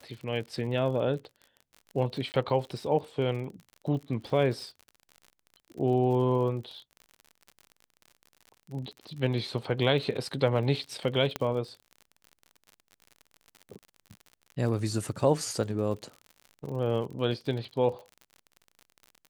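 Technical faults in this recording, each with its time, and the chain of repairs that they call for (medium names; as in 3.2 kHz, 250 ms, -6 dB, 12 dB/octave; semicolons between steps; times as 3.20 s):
crackle 51 per s -38 dBFS
2.32–2.34 s: dropout 19 ms
11.36 s: pop -15 dBFS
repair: de-click; interpolate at 2.32 s, 19 ms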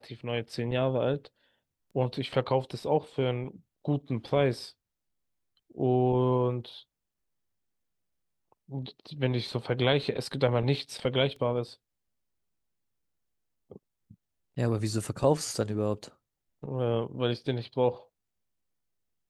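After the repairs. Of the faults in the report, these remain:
11.36 s: pop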